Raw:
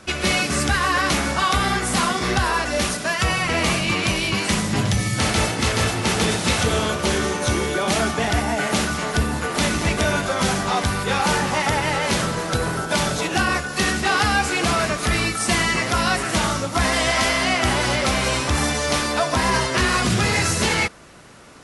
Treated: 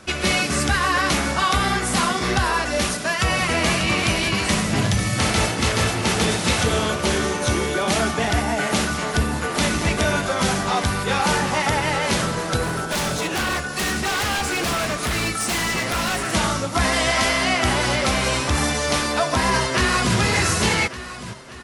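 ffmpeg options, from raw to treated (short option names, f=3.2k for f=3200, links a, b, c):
-filter_complex "[0:a]asplit=2[a][b];[b]afade=t=in:st=2.72:d=0.01,afade=t=out:st=3.69:d=0.01,aecho=0:1:590|1180|1770|2360|2950|3540|4130|4720|5310|5900|6490|7080:0.398107|0.29858|0.223935|0.167951|0.125964|0.0944727|0.0708545|0.0531409|0.0398557|0.0298918|0.0224188|0.0168141[c];[a][c]amix=inputs=2:normalize=0,asettb=1/sr,asplit=3[d][e][f];[d]atrim=end=12.634[g];[e]atrim=start=12.63:end=16.33,asetpts=PTS-STARTPTS,afade=t=in:d=0.004:c=qsin,afade=t=out:st=3.696:d=0.004:c=qsin,aeval=exprs='0.133*(abs(mod(val(0)/0.133+3,4)-2)-1)':c=same[h];[f]atrim=start=16.326[i];[g][h]acrossfade=d=0.004:c1=hsin:c2=qsin[j];[j][i]acrossfade=d=0.004:c1=qsin:c2=hsin,asplit=2[k][l];[l]afade=t=in:st=19.49:d=0.01,afade=t=out:st=20.17:d=0.01,aecho=0:1:580|1160|1740|2320|2900|3480:0.375837|0.187919|0.0939594|0.0469797|0.0234898|0.0117449[m];[k][m]amix=inputs=2:normalize=0"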